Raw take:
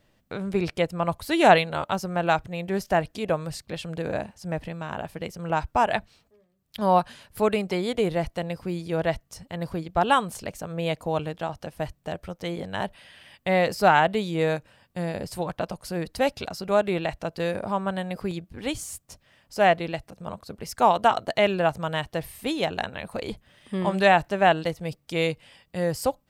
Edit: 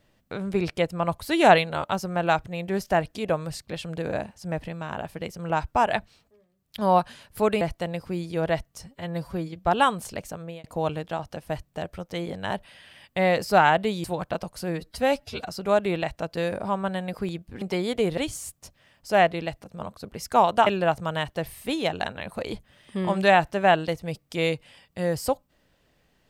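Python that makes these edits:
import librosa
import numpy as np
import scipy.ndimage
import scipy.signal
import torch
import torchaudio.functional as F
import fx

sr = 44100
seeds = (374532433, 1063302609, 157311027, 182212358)

y = fx.edit(x, sr, fx.move(start_s=7.61, length_s=0.56, to_s=18.64),
    fx.stretch_span(start_s=9.42, length_s=0.52, factor=1.5),
    fx.fade_out_span(start_s=10.59, length_s=0.35),
    fx.cut(start_s=14.34, length_s=0.98),
    fx.stretch_span(start_s=16.0, length_s=0.51, factor=1.5),
    fx.cut(start_s=21.13, length_s=0.31), tone=tone)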